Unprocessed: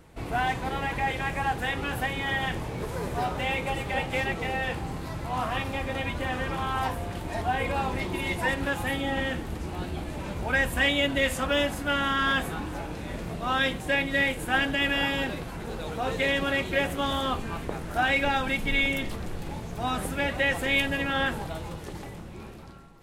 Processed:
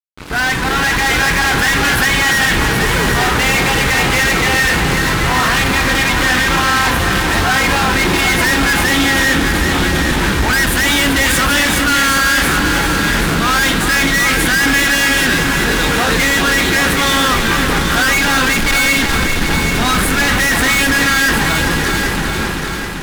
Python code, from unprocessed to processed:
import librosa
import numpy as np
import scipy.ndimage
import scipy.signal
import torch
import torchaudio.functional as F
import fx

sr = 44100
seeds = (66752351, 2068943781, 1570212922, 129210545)

p1 = fx.fade_in_head(x, sr, length_s=1.0)
p2 = fx.graphic_eq_15(p1, sr, hz=(100, 630, 1600, 4000), db=(-7, -11, 8, 4))
p3 = fx.fuzz(p2, sr, gain_db=39.0, gate_db=-48.0)
y = p3 + fx.echo_heads(p3, sr, ms=390, heads='first and second', feedback_pct=53, wet_db=-9.0, dry=0)